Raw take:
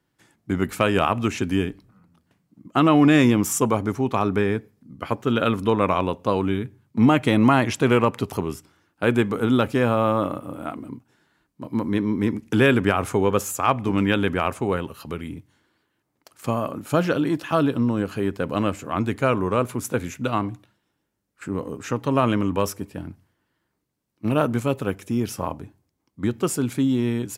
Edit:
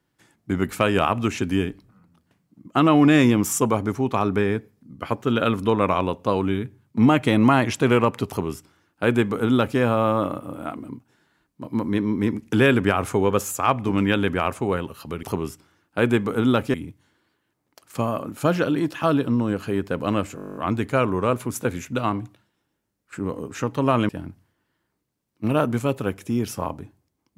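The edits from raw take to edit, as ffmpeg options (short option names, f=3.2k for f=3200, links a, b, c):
-filter_complex "[0:a]asplit=14[a][b][c][d][e][f][g][h][i][j][k][l][m][n];[a]atrim=end=15.232[o];[b]atrim=start=8.278:end=9.792[p];[c]atrim=start=15.228:end=18.872[q];[d]atrim=start=18.848:end=18.872[r];[e]atrim=start=18.848:end=18.872[s];[f]atrim=start=18.848:end=18.872[t];[g]atrim=start=18.848:end=18.872[u];[h]atrim=start=18.848:end=18.872[v];[i]atrim=start=18.848:end=18.872[w];[j]atrim=start=18.848:end=18.872[x];[k]atrim=start=18.848:end=18.872[y];[l]atrim=start=18.848:end=18.872[z];[m]atrim=start=18.848:end=22.382[aa];[n]atrim=start=22.898[ab];[o][p]acrossfade=d=0.004:c1=hsin:c2=hsin[ac];[ac][q]acrossfade=d=0.004:c1=hsin:c2=hsin[ad];[ad][r]acrossfade=d=0.004:c1=hsin:c2=hsin[ae];[ae][s]acrossfade=d=0.004:c1=hsin:c2=hsin[af];[af][t]acrossfade=d=0.004:c1=hsin:c2=hsin[ag];[ag][u]acrossfade=d=0.004:c1=hsin:c2=hsin[ah];[ah][v]acrossfade=d=0.004:c1=hsin:c2=hsin[ai];[ai][w]acrossfade=d=0.004:c1=hsin:c2=hsin[aj];[aj][x]acrossfade=d=0.004:c1=hsin:c2=hsin[ak];[ak][y]acrossfade=d=0.004:c1=hsin:c2=hsin[al];[al][z]acrossfade=d=0.004:c1=hsin:c2=hsin[am];[am][aa]acrossfade=d=0.004:c1=hsin:c2=hsin[an];[an][ab]acrossfade=d=0.004:c1=hsin:c2=hsin"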